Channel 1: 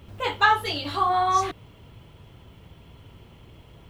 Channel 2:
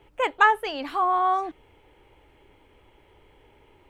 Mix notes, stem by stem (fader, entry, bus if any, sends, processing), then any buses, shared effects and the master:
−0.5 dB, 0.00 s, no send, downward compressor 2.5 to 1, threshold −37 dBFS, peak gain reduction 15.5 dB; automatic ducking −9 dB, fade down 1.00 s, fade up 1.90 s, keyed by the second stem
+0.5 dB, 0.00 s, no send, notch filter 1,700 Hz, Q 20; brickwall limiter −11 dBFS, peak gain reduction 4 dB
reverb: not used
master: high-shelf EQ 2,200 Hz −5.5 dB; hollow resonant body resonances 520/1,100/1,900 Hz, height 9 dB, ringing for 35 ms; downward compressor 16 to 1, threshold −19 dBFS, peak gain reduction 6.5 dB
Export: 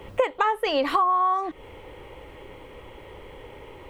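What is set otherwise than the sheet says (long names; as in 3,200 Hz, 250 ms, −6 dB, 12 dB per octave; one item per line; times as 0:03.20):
stem 2 +0.5 dB → +11.5 dB
master: missing high-shelf EQ 2,200 Hz −5.5 dB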